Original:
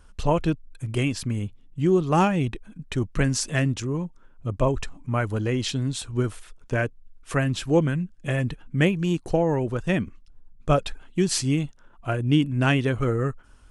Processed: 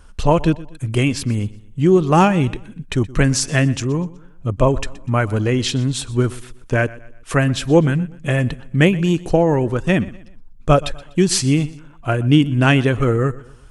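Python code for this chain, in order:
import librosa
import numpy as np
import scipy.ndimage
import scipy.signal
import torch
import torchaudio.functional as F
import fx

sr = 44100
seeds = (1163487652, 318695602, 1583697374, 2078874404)

y = fx.echo_feedback(x, sr, ms=123, feedback_pct=39, wet_db=-20)
y = y * 10.0 ** (7.0 / 20.0)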